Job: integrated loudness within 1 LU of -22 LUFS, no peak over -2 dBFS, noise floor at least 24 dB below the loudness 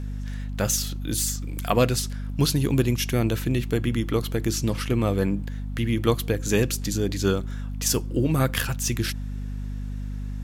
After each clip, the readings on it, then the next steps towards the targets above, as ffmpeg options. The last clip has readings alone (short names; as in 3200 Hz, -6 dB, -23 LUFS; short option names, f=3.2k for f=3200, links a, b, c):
hum 50 Hz; harmonics up to 250 Hz; hum level -28 dBFS; loudness -25.5 LUFS; peak -7.0 dBFS; loudness target -22.0 LUFS
-> -af "bandreject=f=50:t=h:w=4,bandreject=f=100:t=h:w=4,bandreject=f=150:t=h:w=4,bandreject=f=200:t=h:w=4,bandreject=f=250:t=h:w=4"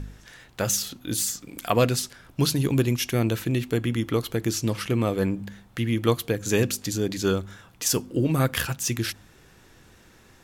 hum none; loudness -25.5 LUFS; peak -7.0 dBFS; loudness target -22.0 LUFS
-> -af "volume=3.5dB"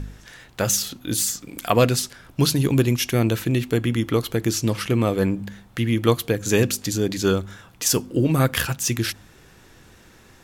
loudness -22.0 LUFS; peak -3.5 dBFS; noise floor -51 dBFS